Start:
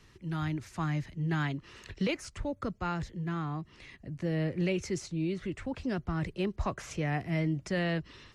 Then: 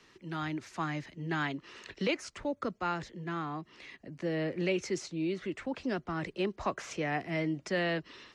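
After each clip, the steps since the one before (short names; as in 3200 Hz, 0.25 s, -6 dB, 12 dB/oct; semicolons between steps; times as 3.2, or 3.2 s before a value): three-band isolator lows -18 dB, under 210 Hz, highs -12 dB, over 7800 Hz; gain +2 dB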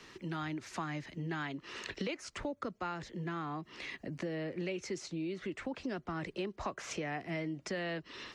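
compressor 4:1, threshold -44 dBFS, peak gain reduction 15 dB; gain +6.5 dB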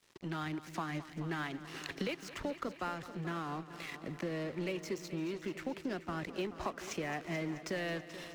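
crossover distortion -50.5 dBFS; multi-head echo 0.216 s, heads first and second, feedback 59%, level -16 dB; gain +1.5 dB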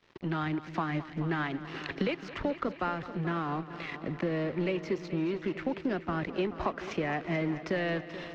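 air absorption 230 m; gain +7.5 dB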